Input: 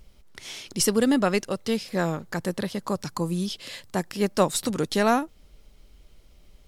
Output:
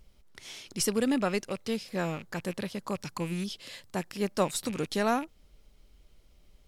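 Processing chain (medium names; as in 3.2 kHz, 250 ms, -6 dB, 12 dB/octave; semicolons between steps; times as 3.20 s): rattle on loud lows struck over -41 dBFS, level -28 dBFS; trim -6 dB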